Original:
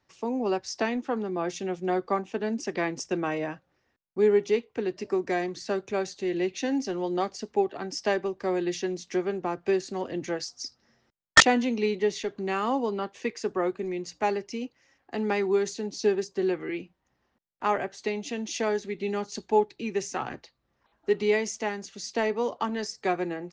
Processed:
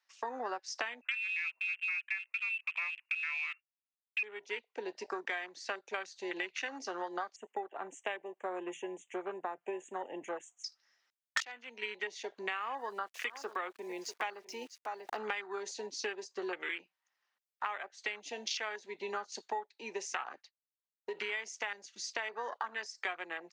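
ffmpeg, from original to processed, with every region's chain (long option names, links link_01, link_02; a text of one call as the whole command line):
ffmpeg -i in.wav -filter_complex "[0:a]asettb=1/sr,asplit=3[link_01][link_02][link_03];[link_01]atrim=end=1.014[link_04];[link_02]atrim=start=1.01:end=4.23,asetpts=PTS-STARTPTS,afade=type=in:duration=0.004:curve=qsin,afade=type=out:start_time=3.216:duration=0.004:curve=qsin,agate=range=-33dB:threshold=-49dB:ratio=3:release=100:detection=peak,lowpass=frequency=2500:width_type=q:width=0.5098,lowpass=frequency=2500:width_type=q:width=0.6013,lowpass=frequency=2500:width_type=q:width=0.9,lowpass=frequency=2500:width_type=q:width=2.563,afreqshift=-2900[link_05];[link_03]atrim=start=4.226[link_06];[link_04][link_05]acrossfade=duration=0.004:curve1=hsin:curve2=qsin[link_07];[link_07][link_06]acrossfade=duration=0.004:curve1=qsin:curve2=hsin,asettb=1/sr,asplit=3[link_08][link_09][link_10];[link_08]atrim=end=7.364[link_11];[link_09]atrim=start=7.36:end=10.64,asetpts=PTS-STARTPTS,afade=type=in:duration=0.004:curve=qsin,afade=type=out:start_time=3.276:duration=0.004:curve=qsin,asuperstop=centerf=4700:order=8:qfactor=1.2,equalizer=frequency=1400:width=1.3:gain=-9.5[link_12];[link_10]atrim=start=10.636[link_13];[link_11][link_12]acrossfade=duration=0.004:curve1=hsin:curve2=qsin[link_14];[link_14][link_13]acrossfade=duration=0.004:curve1=qsin:curve2=hsin,asettb=1/sr,asplit=3[link_15][link_16][link_17];[link_15]atrim=end=12.614[link_18];[link_16]atrim=start=12.61:end=15.17,asetpts=PTS-STARTPTS,afade=type=in:duration=0.004:curve=qsin,afade=type=out:start_time=2.556:duration=0.004:curve=qsin,aeval=exprs='val(0)*gte(abs(val(0)),0.00355)':channel_layout=same,aecho=1:1:644:0.126,atrim=end_sample=112896,acompressor=mode=upward:threshold=-31dB:ratio=2.5:attack=3.2:release=140:knee=2.83:detection=peak[link_19];[link_17]atrim=start=15.166[link_20];[link_18][link_19]acrossfade=duration=0.004:curve1=hsin:curve2=qsin[link_21];[link_21][link_20]acrossfade=duration=0.004:curve1=qsin:curve2=hsin,asettb=1/sr,asplit=3[link_22][link_23][link_24];[link_22]atrim=end=20.304[link_25];[link_23]atrim=start=20.3:end=22.64,asetpts=PTS-STARTPTS,afade=type=in:duration=0.004:curve=qsin,afade=type=out:start_time=2.336:duration=0.004:curve=qsin,agate=range=-33dB:threshold=-48dB:ratio=3:release=100:detection=peak,acompressor=threshold=-26dB:ratio=4:attack=3.2:release=140:knee=1:detection=peak[link_26];[link_24]atrim=start=22.636[link_27];[link_25][link_26]acrossfade=duration=0.004:curve1=hsin:curve2=qsin[link_28];[link_28][link_27]acrossfade=duration=0.004:curve1=qsin:curve2=hsin,afwtdn=0.0126,highpass=1400,acompressor=threshold=-48dB:ratio=10,volume=13.5dB" out.wav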